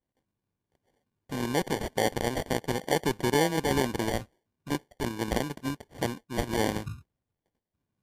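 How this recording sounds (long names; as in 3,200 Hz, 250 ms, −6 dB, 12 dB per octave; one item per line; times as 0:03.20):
aliases and images of a low sample rate 1,300 Hz, jitter 0%
MP3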